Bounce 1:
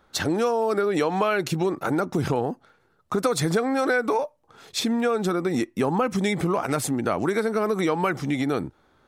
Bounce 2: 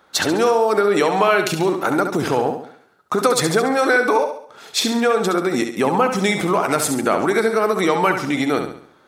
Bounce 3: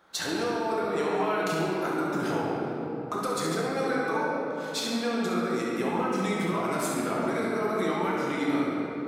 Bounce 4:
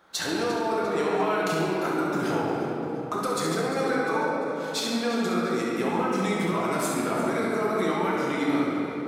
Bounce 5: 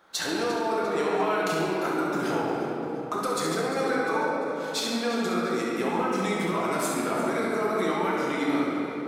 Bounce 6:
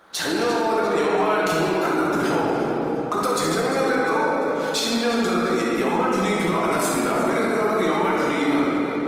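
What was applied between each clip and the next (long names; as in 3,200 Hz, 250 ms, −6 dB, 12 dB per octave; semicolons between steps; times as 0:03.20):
high-pass filter 360 Hz 6 dB per octave; on a send: flutter between parallel walls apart 11.8 metres, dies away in 0.56 s; on the sum: level +7.5 dB
downward compressor 4 to 1, threshold −24 dBFS, peak gain reduction 11.5 dB; rectangular room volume 200 cubic metres, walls hard, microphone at 0.8 metres; level −8 dB
feedback echo with a high-pass in the loop 348 ms, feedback 43%, level −14 dB; level +2 dB
parametric band 99 Hz −5.5 dB 1.8 octaves
in parallel at +2.5 dB: brickwall limiter −24 dBFS, peak gain reduction 9.5 dB; on the sum: level +1 dB; Opus 24 kbit/s 48,000 Hz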